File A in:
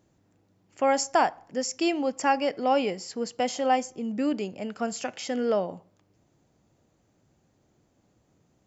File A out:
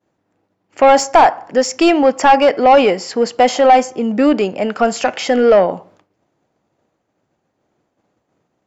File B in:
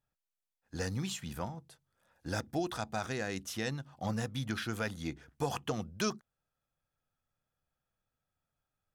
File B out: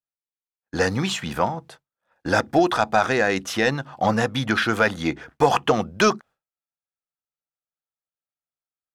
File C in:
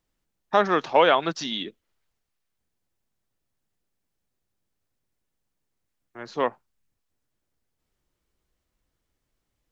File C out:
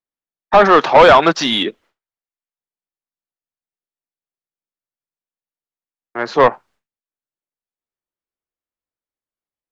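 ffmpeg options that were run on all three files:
-filter_complex "[0:a]asplit=2[a][b];[b]highpass=f=720:p=1,volume=19dB,asoftclip=type=tanh:threshold=-5dB[c];[a][c]amix=inputs=2:normalize=0,lowpass=f=1.4k:p=1,volume=-6dB,agate=range=-33dB:threshold=-51dB:ratio=3:detection=peak,acontrast=89,volume=2dB"

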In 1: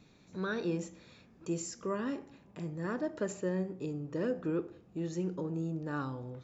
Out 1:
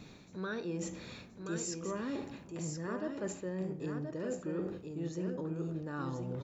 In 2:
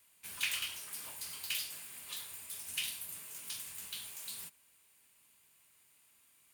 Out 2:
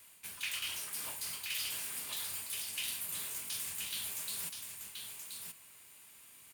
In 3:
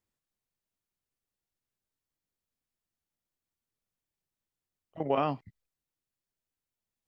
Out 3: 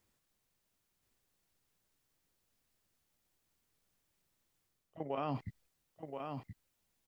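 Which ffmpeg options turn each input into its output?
-af "areverse,acompressor=threshold=-47dB:ratio=4,areverse,aecho=1:1:1026:0.531,volume=9dB"

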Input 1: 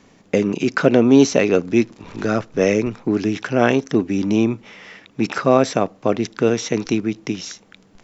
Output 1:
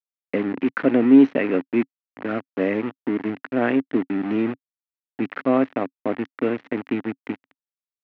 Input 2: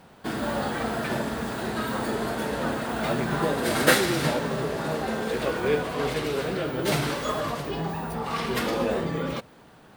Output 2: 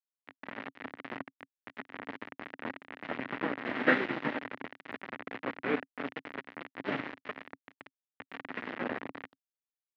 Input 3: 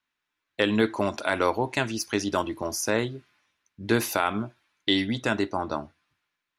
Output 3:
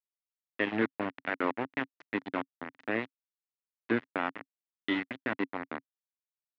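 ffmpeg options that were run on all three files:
-af "aeval=exprs='val(0)*gte(abs(val(0)),0.0944)':c=same,highpass=f=120:w=0.5412,highpass=f=120:w=1.3066,equalizer=f=150:t=q:w=4:g=-7,equalizer=f=270:t=q:w=4:g=9,equalizer=f=1.9k:t=q:w=4:g=6,lowpass=f=2.7k:w=0.5412,lowpass=f=2.7k:w=1.3066,volume=-7dB"

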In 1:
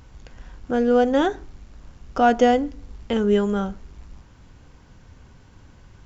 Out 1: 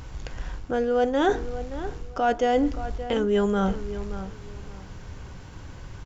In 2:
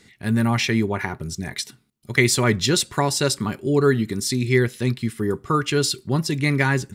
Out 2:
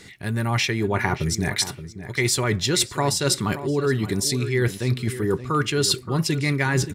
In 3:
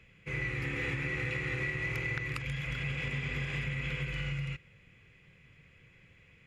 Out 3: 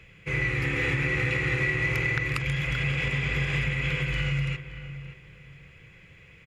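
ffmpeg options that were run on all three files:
-filter_complex "[0:a]areverse,acompressor=threshold=-26dB:ratio=10,areverse,equalizer=f=230:w=5.5:g=-7.5,asplit=2[a][b];[b]adelay=574,lowpass=f=2.3k:p=1,volume=-12dB,asplit=2[c][d];[d]adelay=574,lowpass=f=2.3k:p=1,volume=0.24,asplit=2[e][f];[f]adelay=574,lowpass=f=2.3k:p=1,volume=0.24[g];[a][c][e][g]amix=inputs=4:normalize=0,volume=8dB"

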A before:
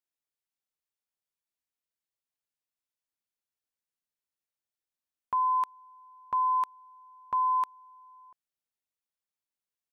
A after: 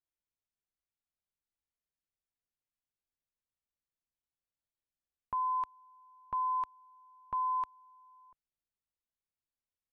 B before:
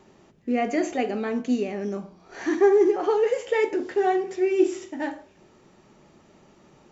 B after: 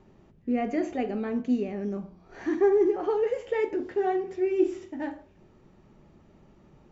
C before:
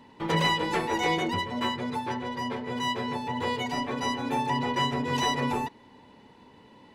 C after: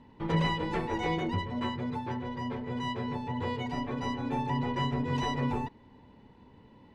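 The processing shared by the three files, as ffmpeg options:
-af "aemphasis=mode=reproduction:type=bsi,volume=-6dB"

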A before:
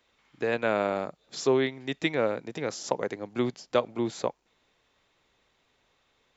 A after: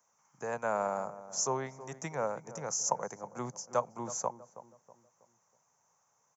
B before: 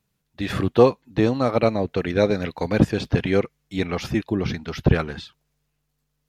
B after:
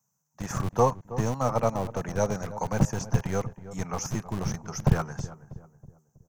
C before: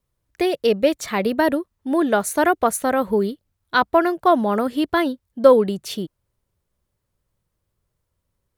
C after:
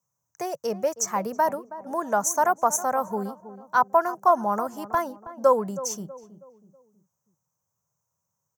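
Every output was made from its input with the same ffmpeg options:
-filter_complex "[0:a]firequalizer=gain_entry='entry(150,0);entry(290,-18);entry(510,-8);entry(910,2);entry(1900,-13);entry(3800,-25);entry(6100,12);entry(9600,-8);entry(15000,3)':delay=0.05:min_phase=1,acrossover=split=130|530|5300[a][b][c][d];[a]acrusher=bits=3:dc=4:mix=0:aa=0.000001[e];[e][b][c][d]amix=inputs=4:normalize=0,asplit=2[f][g];[g]adelay=322,lowpass=f=1k:p=1,volume=-13.5dB,asplit=2[h][i];[i]adelay=322,lowpass=f=1k:p=1,volume=0.44,asplit=2[j][k];[k]adelay=322,lowpass=f=1k:p=1,volume=0.44,asplit=2[l][m];[m]adelay=322,lowpass=f=1k:p=1,volume=0.44[n];[f][h][j][l][n]amix=inputs=5:normalize=0"

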